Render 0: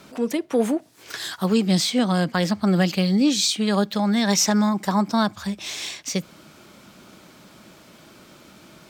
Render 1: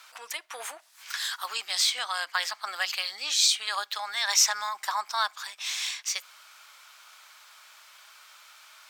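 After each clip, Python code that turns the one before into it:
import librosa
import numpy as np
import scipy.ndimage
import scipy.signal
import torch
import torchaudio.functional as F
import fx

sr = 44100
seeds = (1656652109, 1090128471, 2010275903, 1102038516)

y = scipy.signal.sosfilt(scipy.signal.butter(4, 1000.0, 'highpass', fs=sr, output='sos'), x)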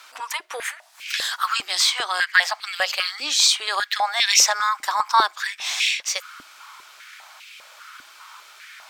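y = fx.high_shelf(x, sr, hz=9900.0, db=-3.5)
y = fx.filter_held_highpass(y, sr, hz=5.0, low_hz=280.0, high_hz=2500.0)
y = F.gain(torch.from_numpy(y), 5.5).numpy()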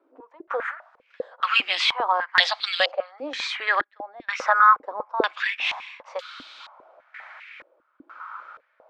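y = fx.small_body(x, sr, hz=(260.0, 510.0), ring_ms=25, db=9)
y = fx.filter_held_lowpass(y, sr, hz=2.1, low_hz=340.0, high_hz=3800.0)
y = F.gain(torch.from_numpy(y), -3.0).numpy()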